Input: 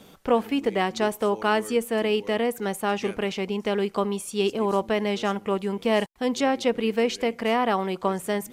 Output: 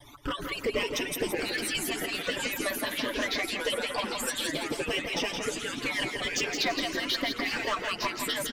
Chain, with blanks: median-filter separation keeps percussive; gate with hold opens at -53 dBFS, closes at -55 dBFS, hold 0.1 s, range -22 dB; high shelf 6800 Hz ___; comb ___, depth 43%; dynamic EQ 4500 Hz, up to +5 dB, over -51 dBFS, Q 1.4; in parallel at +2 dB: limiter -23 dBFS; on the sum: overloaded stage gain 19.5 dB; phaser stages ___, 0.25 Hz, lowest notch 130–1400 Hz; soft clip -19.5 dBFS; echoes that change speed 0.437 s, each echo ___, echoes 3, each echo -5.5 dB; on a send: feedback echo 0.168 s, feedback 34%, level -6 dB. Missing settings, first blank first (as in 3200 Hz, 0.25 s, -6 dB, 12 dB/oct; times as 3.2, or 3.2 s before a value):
-2.5 dB, 6.9 ms, 12, -3 st